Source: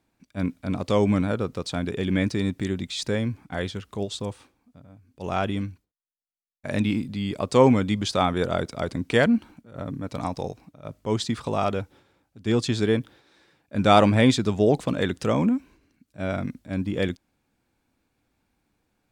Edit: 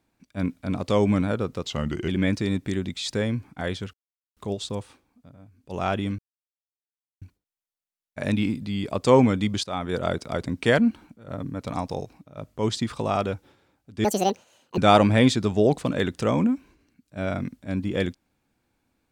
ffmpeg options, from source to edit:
-filter_complex "[0:a]asplit=8[a][b][c][d][e][f][g][h];[a]atrim=end=1.654[i];[b]atrim=start=1.65:end=2.02,asetpts=PTS-STARTPTS,asetrate=37485,aresample=44100,atrim=end_sample=19196,asetpts=PTS-STARTPTS[j];[c]atrim=start=2.016:end=3.87,asetpts=PTS-STARTPTS,afade=t=out:st=1.85:d=0.004:c=hsin,apad=pad_dur=0.43[k];[d]atrim=start=3.87:end=5.69,asetpts=PTS-STARTPTS,afade=t=in:d=0.004:c=hsin,afade=t=out:st=1.816:d=0.004:c=hsin,apad=pad_dur=1.03[l];[e]atrim=start=5.69:end=8.11,asetpts=PTS-STARTPTS,afade=t=in:d=0.004:c=hsin,afade=t=out:st=2.416:d=0.004:c=hsin:silence=0.188365[m];[f]atrim=start=8.11:end=12.524,asetpts=PTS-STARTPTS,afade=t=in:d=0.45:silence=0.188365[n];[g]atrim=start=12.52:end=13.8,asetpts=PTS-STARTPTS,asetrate=77175,aresample=44100[o];[h]atrim=start=13.796[p];[i][j]acrossfade=d=0.004:c1=hsin:c2=hsin[q];[k][l][m][n]concat=n=4:v=0:a=1[r];[q][r]acrossfade=d=0.004:c1=hsin:c2=hsin[s];[s][o]acrossfade=d=0.004:c1=hsin:c2=hsin[t];[t][p]acrossfade=d=0.004:c1=hsin:c2=hsin"

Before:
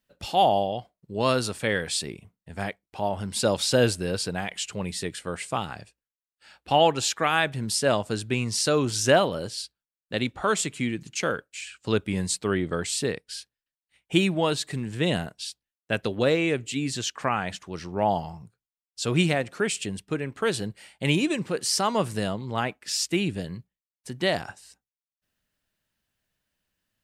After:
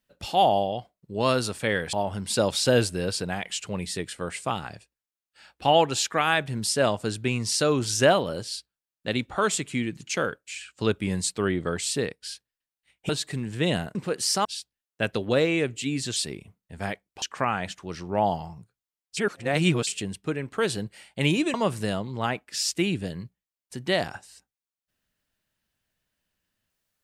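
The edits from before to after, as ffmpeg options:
-filter_complex "[0:a]asplit=10[a][b][c][d][e][f][g][h][i][j];[a]atrim=end=1.932[k];[b]atrim=start=2.988:end=14.152[l];[c]atrim=start=14.488:end=15.352[m];[d]atrim=start=21.378:end=21.882[n];[e]atrim=start=15.348:end=17.062[o];[f]atrim=start=1.928:end=2.992[p];[g]atrim=start=17.058:end=19.012[q];[h]atrim=start=19.008:end=19.712,asetpts=PTS-STARTPTS,areverse[r];[i]atrim=start=19.708:end=21.382[s];[j]atrim=start=21.878[t];[k][l]acrossfade=d=0.004:c1=hsin:c2=hsin[u];[u][m]acrossfade=d=0.004:c1=hsin:c2=hsin[v];[v][n]acrossfade=d=0.004:c1=hsin:c2=hsin[w];[w][o]acrossfade=d=0.004:c1=hsin:c2=hsin[x];[x][p]acrossfade=d=0.004:c1=hsin:c2=hsin[y];[y][q]acrossfade=d=0.004:c1=hsin:c2=hsin[z];[z][r]acrossfade=d=0.004:c1=hsin:c2=hsin[aa];[aa][s]acrossfade=d=0.004:c1=hsin:c2=hsin[ab];[ab][t]acrossfade=d=0.004:c1=hsin:c2=hsin"

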